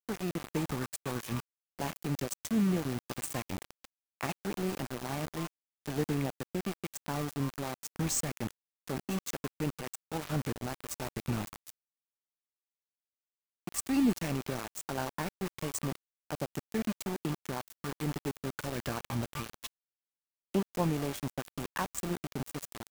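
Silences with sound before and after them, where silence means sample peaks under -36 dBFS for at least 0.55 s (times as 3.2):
11.7–13.67
19.67–20.54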